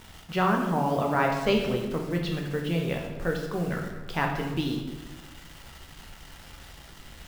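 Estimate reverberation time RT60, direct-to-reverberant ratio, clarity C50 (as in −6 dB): 1.1 s, 0.5 dB, 4.5 dB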